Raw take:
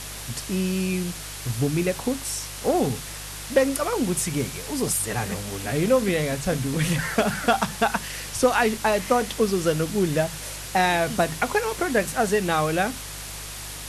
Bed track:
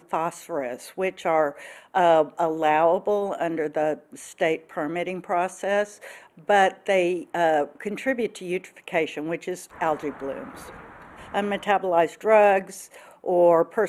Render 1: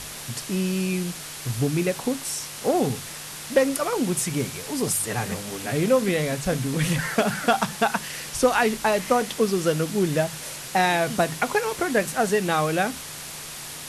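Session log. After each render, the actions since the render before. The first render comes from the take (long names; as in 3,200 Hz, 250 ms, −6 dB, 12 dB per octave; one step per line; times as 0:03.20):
hum removal 50 Hz, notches 2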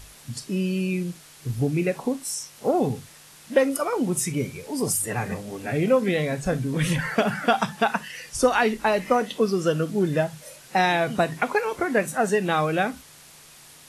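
noise reduction from a noise print 12 dB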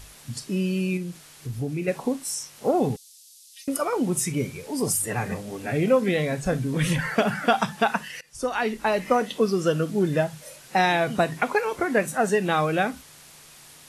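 0:00.97–0:01.88: downward compressor 1.5 to 1, threshold −34 dBFS
0:02.96–0:03.68: inverse Chebyshev high-pass filter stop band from 930 Hz, stop band 70 dB
0:08.21–0:09.33: fade in equal-power, from −20 dB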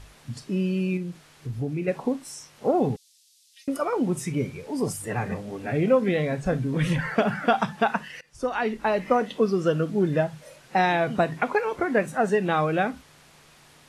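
low-pass filter 2,400 Hz 6 dB per octave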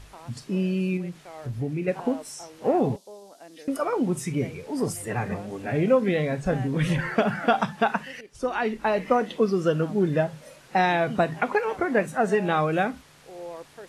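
mix in bed track −21 dB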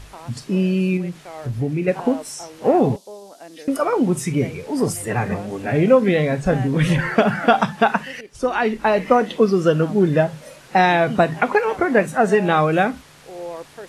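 level +6.5 dB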